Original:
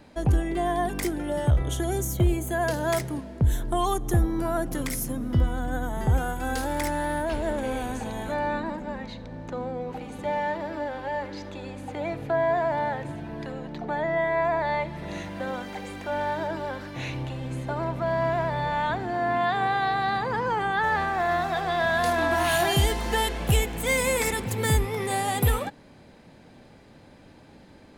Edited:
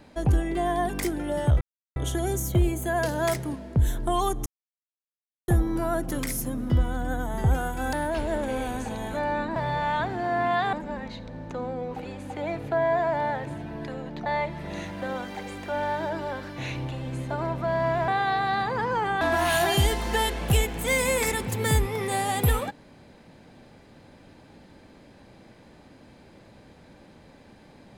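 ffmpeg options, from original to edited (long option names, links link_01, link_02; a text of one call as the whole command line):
ffmpeg -i in.wav -filter_complex "[0:a]asplit=10[link_01][link_02][link_03][link_04][link_05][link_06][link_07][link_08][link_09][link_10];[link_01]atrim=end=1.61,asetpts=PTS-STARTPTS,afade=type=out:start_time=1.606:duration=0.004:curve=hsin,apad=pad_dur=0.35[link_11];[link_02]atrim=start=1.61:end=4.11,asetpts=PTS-STARTPTS,afade=type=in:duration=0.004:curve=hsin,afade=type=out:start_time=2.496:duration=0.004:curve=hsin,apad=pad_dur=1.02[link_12];[link_03]atrim=start=4.11:end=6.562,asetpts=PTS-STARTPTS,afade=type=in:duration=0.004:curve=hsin[link_13];[link_04]atrim=start=7.078:end=8.712[link_14];[link_05]atrim=start=18.458:end=19.632[link_15];[link_06]atrim=start=8.708:end=10.032[link_16];[link_07]atrim=start=11.628:end=13.842[link_17];[link_08]atrim=start=14.638:end=18.462[link_18];[link_09]atrim=start=19.628:end=20.762[link_19];[link_10]atrim=start=22.198[link_20];[link_11][link_12][link_13]concat=n=3:v=0:a=1[link_21];[link_21][link_14]acrossfade=duration=0.004:curve1=hsin:curve2=hsin[link_22];[link_22][link_15]acrossfade=duration=0.004:curve1=hsin:curve2=hsin[link_23];[link_23][link_16]acrossfade=duration=0.004:curve1=hsin:curve2=hsin[link_24];[link_24][link_17]acrossfade=duration=0.004:curve1=hsin:curve2=hsin[link_25];[link_25][link_18]acrossfade=duration=0.004:curve1=hsin:curve2=hsin[link_26];[link_26][link_19]acrossfade=duration=0.004:curve1=hsin:curve2=hsin[link_27];[link_27][link_20]acrossfade=duration=0.004:curve1=hsin:curve2=hsin" out.wav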